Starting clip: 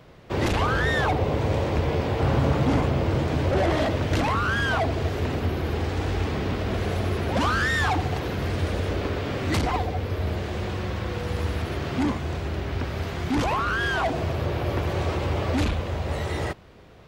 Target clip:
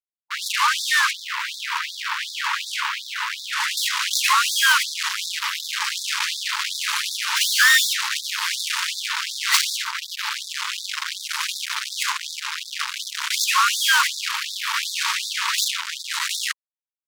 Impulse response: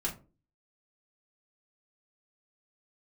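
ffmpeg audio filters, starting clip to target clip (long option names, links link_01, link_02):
-af "asetnsamples=nb_out_samples=441:pad=0,asendcmd='3.77 equalizer g 8',equalizer=frequency=6300:width_type=o:width=1.9:gain=-3,acrusher=bits=3:mix=0:aa=0.5,afftfilt=real='re*gte(b*sr/1024,840*pow(3500/840,0.5+0.5*sin(2*PI*2.7*pts/sr)))':imag='im*gte(b*sr/1024,840*pow(3500/840,0.5+0.5*sin(2*PI*2.7*pts/sr)))':win_size=1024:overlap=0.75,volume=8.5dB"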